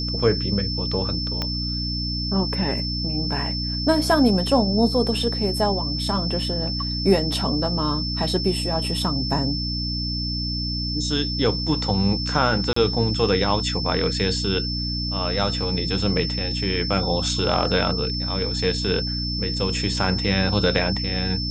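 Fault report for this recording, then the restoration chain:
hum 60 Hz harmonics 5 -28 dBFS
tone 5300 Hz -27 dBFS
1.42 pop -11 dBFS
12.73–12.76 gap 34 ms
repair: de-click; de-hum 60 Hz, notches 5; notch 5300 Hz, Q 30; interpolate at 12.73, 34 ms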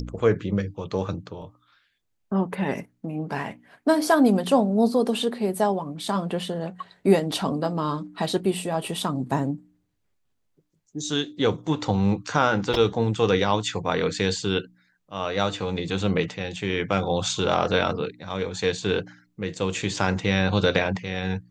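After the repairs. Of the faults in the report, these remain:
1.42 pop

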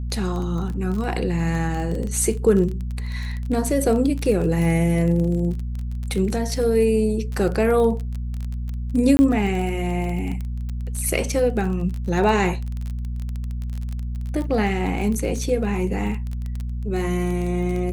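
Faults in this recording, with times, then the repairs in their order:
crackle 21/s -26 dBFS
hum 60 Hz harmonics 4 -27 dBFS
9.17–9.19 gap 20 ms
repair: de-click; de-hum 60 Hz, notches 4; interpolate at 9.17, 20 ms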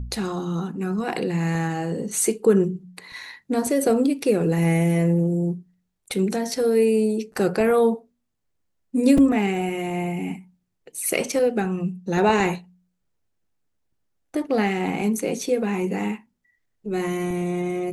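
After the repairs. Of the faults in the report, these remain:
none

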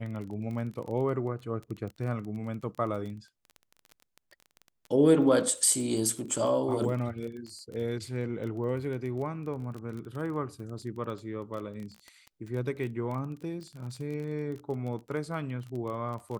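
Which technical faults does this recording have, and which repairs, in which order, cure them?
crackle 21/s -36 dBFS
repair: de-click

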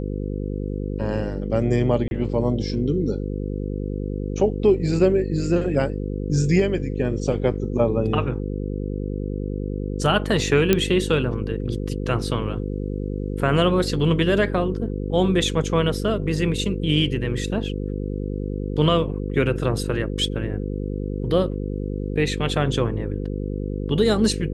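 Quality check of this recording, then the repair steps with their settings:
buzz 50 Hz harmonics 10 -27 dBFS
2.08–2.11 gap 31 ms
10.73 pop -3 dBFS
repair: de-click; de-hum 50 Hz, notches 10; interpolate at 2.08, 31 ms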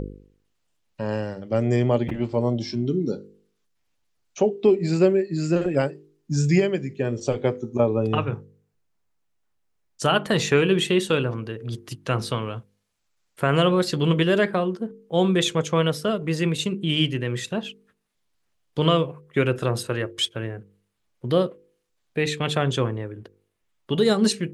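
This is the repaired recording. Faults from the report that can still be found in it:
none

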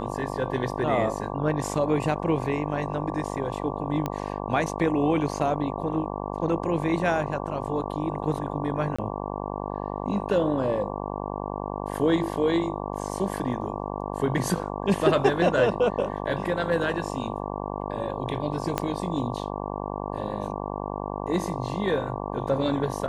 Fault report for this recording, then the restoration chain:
buzz 50 Hz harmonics 23 -32 dBFS
4.06 pop -14 dBFS
8.96–8.98 gap 25 ms
18.78 pop -10 dBFS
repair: de-click; de-hum 50 Hz, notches 23; interpolate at 8.96, 25 ms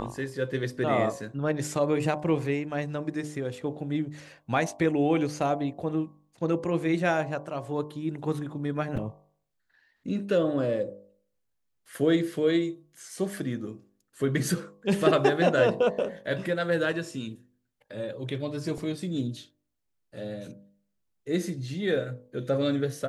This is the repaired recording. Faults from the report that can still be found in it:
18.78 pop

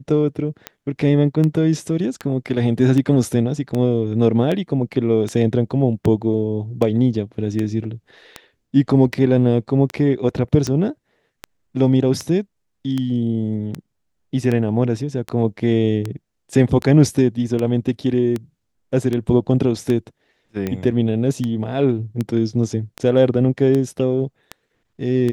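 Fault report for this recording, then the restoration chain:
tick 78 rpm -11 dBFS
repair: de-click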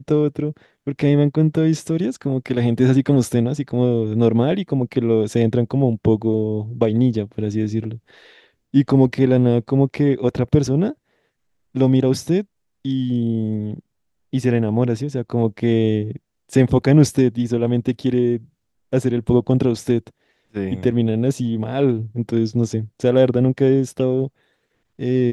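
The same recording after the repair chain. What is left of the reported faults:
none

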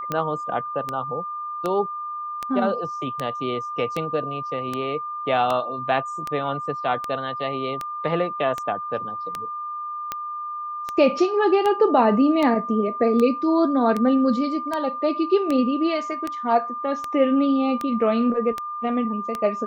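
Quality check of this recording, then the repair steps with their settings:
tick 78 rpm -12 dBFS
tone 1200 Hz -28 dBFS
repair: de-click; notch 1200 Hz, Q 30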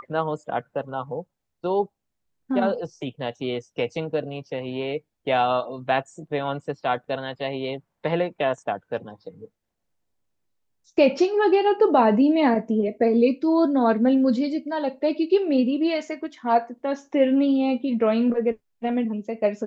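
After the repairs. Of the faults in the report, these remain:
none

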